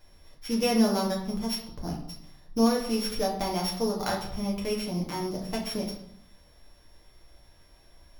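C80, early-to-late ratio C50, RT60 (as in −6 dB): 9.5 dB, 6.0 dB, 0.70 s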